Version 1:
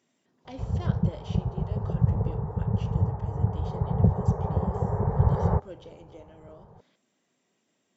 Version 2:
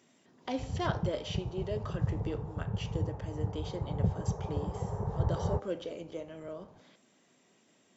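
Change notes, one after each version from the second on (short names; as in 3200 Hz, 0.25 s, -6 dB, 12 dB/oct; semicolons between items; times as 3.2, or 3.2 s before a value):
speech +7.5 dB; background -8.5 dB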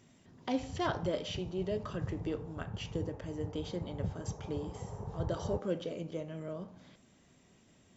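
speech: remove HPF 260 Hz 12 dB/oct; background -7.5 dB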